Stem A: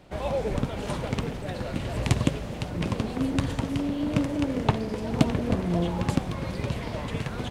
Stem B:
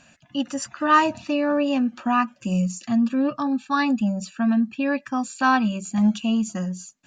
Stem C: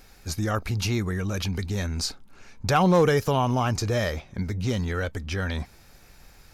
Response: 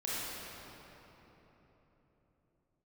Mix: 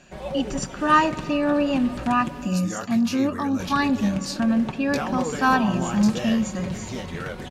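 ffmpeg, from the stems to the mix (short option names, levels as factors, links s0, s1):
-filter_complex "[0:a]aecho=1:1:5.4:0.74,alimiter=limit=0.224:level=0:latency=1:release=284,volume=0.531,asplit=3[s0][s1][s2];[s0]atrim=end=2.48,asetpts=PTS-STARTPTS,afade=t=out:st=2.476:d=0.004:c=hsin[s3];[s1]atrim=start=2.48:end=3.6,asetpts=PTS-STARTPTS,volume=0[s4];[s2]atrim=start=3.6,asetpts=PTS-STARTPTS,afade=t=in:d=0.004:c=hsin[s5];[s3][s4][s5]concat=n=3:v=0:a=1[s6];[1:a]volume=0.891,asplit=2[s7][s8];[s8]volume=0.106[s9];[2:a]highpass=f=260:p=1,acompressor=threshold=0.0708:ratio=6,flanger=delay=18.5:depth=6.3:speed=3,adelay=2250,volume=1[s10];[3:a]atrim=start_sample=2205[s11];[s9][s11]afir=irnorm=-1:irlink=0[s12];[s6][s7][s10][s12]amix=inputs=4:normalize=0"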